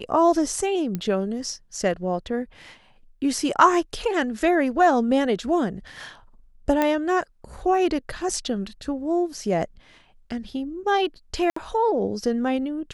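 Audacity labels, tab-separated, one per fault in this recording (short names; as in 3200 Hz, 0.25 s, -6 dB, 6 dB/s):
0.950000	0.950000	pop -15 dBFS
6.820000	6.820000	pop -9 dBFS
11.500000	11.560000	gap 64 ms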